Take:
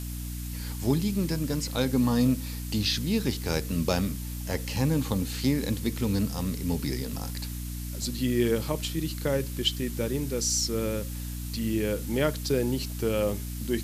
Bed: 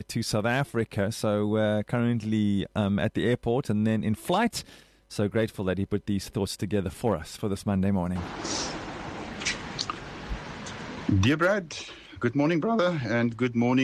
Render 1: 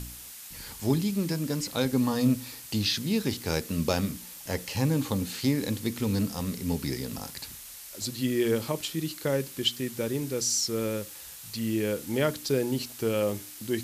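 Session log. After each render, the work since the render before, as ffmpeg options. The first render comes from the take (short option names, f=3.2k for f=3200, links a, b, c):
-af "bandreject=f=60:t=h:w=4,bandreject=f=120:t=h:w=4,bandreject=f=180:t=h:w=4,bandreject=f=240:t=h:w=4,bandreject=f=300:t=h:w=4"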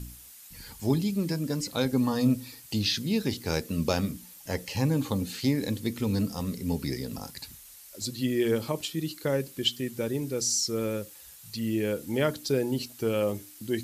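-af "afftdn=nr=8:nf=-45"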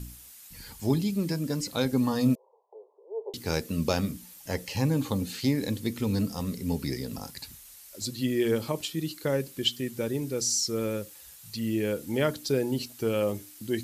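-filter_complex "[0:a]asettb=1/sr,asplit=3[a][b][c];[a]atrim=end=2.354[d];[b]atrim=start=2.35:end=3.34,asetpts=PTS-STARTPTS,afade=t=in:d=0.004:c=qsin,afade=t=out:st=0.986:d=0.004:c=qsin,asuperpass=centerf=640:order=20:qfactor=0.99[e];[c]atrim=start=3.336[f];[d][e]acrossfade=d=0.004:c1=hsin:c2=qsin[g];[g][f]acrossfade=d=0.004:c1=qsin:c2=hsin"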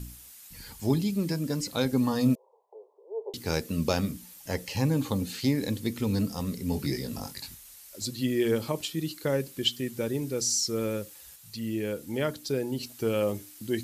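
-filter_complex "[0:a]asettb=1/sr,asplit=3[a][b][c];[a]atrim=end=6.714[d];[b]atrim=start=6.71:end=7.55,asetpts=PTS-STARTPTS,afade=t=in:d=0.004:c=qsin,afade=t=out:st=0.836:d=0.004:c=qsin,asplit=2[e][f];[f]adelay=21,volume=-4dB[g];[e][g]amix=inputs=2:normalize=0,atrim=end_sample=37044[h];[c]atrim=start=7.546[i];[d][h]acrossfade=d=0.004:c1=hsin:c2=qsin[j];[j][i]acrossfade=d=0.004:c1=qsin:c2=hsin,asplit=3[k][l][m];[k]atrim=end=11.362[n];[l]atrim=start=11.358:end=12.832,asetpts=PTS-STARTPTS,volume=-3dB[o];[m]atrim=start=12.828[p];[n][o]acrossfade=d=0.004:c1=hsin:c2=hsin[q];[q][p]acrossfade=d=0.004:c1=hsin:c2=hsin"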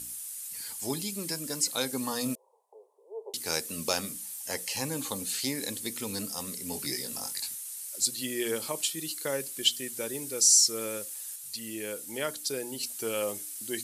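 -af "highpass=f=700:p=1,equalizer=f=9.5k:t=o:w=1.1:g=13.5"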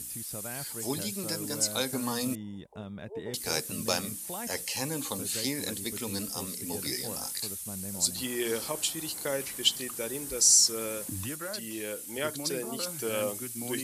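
-filter_complex "[1:a]volume=-16dB[a];[0:a][a]amix=inputs=2:normalize=0"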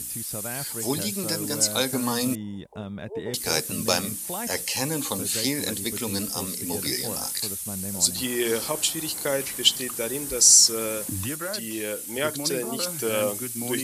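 -af "volume=6dB"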